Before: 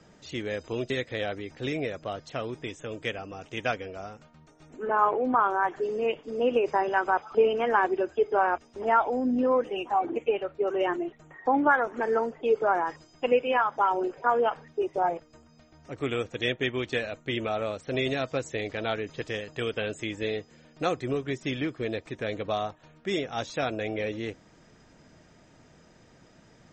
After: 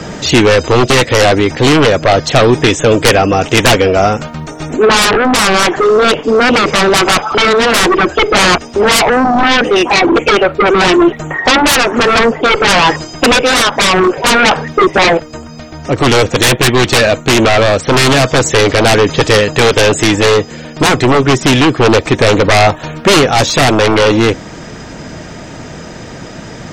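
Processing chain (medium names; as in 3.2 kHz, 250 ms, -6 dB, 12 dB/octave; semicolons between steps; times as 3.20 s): single-diode clipper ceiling -13 dBFS; sine folder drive 18 dB, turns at -11 dBFS; gain riding 0.5 s; trim +6.5 dB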